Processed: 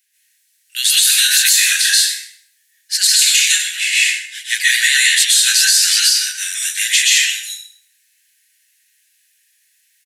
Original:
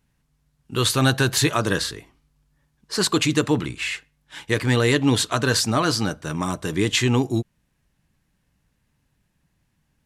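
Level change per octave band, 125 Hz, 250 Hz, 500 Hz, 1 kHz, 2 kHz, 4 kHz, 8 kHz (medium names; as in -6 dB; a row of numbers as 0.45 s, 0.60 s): under -40 dB, under -40 dB, under -40 dB, under -15 dB, +11.0 dB, +13.5 dB, +17.0 dB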